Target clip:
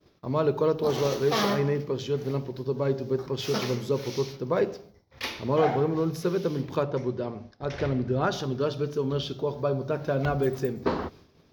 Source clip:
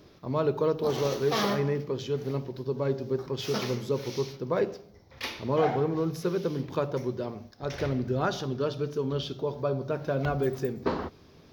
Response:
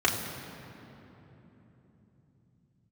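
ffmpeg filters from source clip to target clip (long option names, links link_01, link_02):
-filter_complex "[0:a]agate=range=-33dB:threshold=-47dB:ratio=3:detection=peak,asettb=1/sr,asplit=3[link_01][link_02][link_03];[link_01]atrim=end=6.834[link_04];[link_02]atrim=start=6.83:end=8.32,asetpts=PTS-STARTPTS,afade=type=in:duration=0.004:curve=qsin,afade=type=out:start_time=1.486:duration=0.004:curve=qsin,adynamicsmooth=sensitivity=1.5:basefreq=5500[link_05];[link_03]atrim=start=8.316[link_06];[link_04][link_05]acrossfade=duration=0.004:curve1=hsin:curve2=qsin[link_07];[link_07][link_06]acrossfade=duration=0.004:curve1=qsin:curve2=hsin,volume=2dB"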